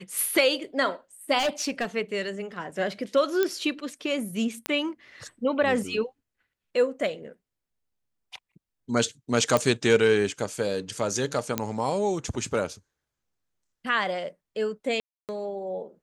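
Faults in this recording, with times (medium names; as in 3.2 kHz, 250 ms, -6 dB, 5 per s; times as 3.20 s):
1.38–1.85 s: clipped -21 dBFS
3.43 s: pop -11 dBFS
4.66 s: pop -11 dBFS
9.57 s: pop -9 dBFS
11.58 s: pop -9 dBFS
15.00–15.29 s: dropout 288 ms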